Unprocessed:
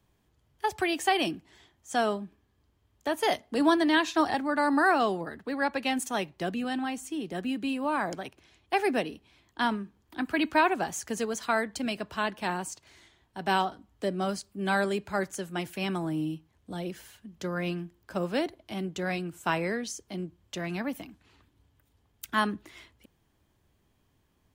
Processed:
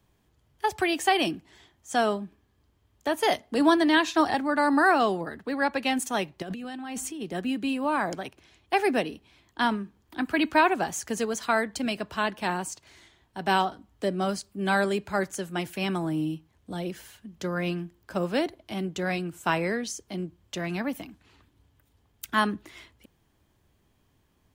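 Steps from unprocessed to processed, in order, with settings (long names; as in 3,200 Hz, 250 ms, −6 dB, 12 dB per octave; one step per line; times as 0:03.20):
0:06.42–0:07.23: compressor whose output falls as the input rises −38 dBFS, ratio −1
level +2.5 dB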